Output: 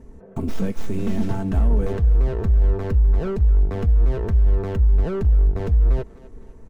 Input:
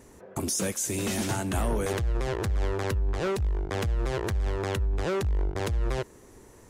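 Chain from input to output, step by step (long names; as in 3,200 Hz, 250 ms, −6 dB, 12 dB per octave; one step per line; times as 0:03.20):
stylus tracing distortion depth 0.14 ms
spectral tilt −4 dB per octave
comb filter 4.5 ms, depth 47%
brickwall limiter −7 dBFS, peak gain reduction 4.5 dB
on a send: feedback echo with a high-pass in the loop 252 ms, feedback 53%, level −16.5 dB
on the sum: level −3.5 dB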